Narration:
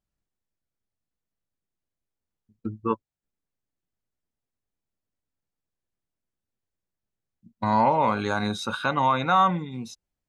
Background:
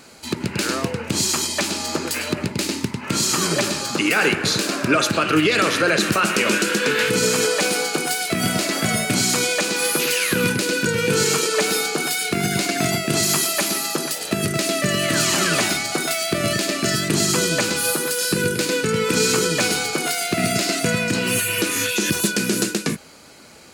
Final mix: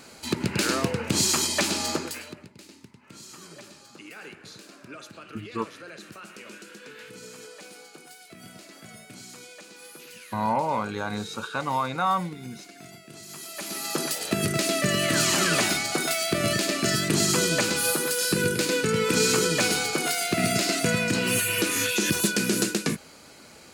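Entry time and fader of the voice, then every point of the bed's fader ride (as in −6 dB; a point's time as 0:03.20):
2.70 s, −4.5 dB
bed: 0:01.90 −2 dB
0:02.51 −25 dB
0:13.24 −25 dB
0:13.99 −3.5 dB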